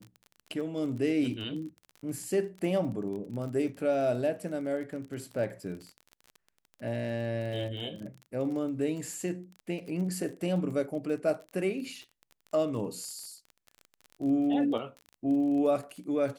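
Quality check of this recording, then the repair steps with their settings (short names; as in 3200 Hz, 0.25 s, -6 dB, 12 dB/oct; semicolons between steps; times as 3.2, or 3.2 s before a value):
crackle 29/s -38 dBFS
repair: de-click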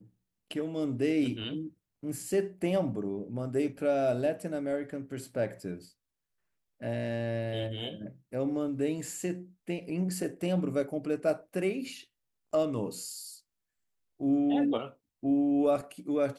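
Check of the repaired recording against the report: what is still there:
none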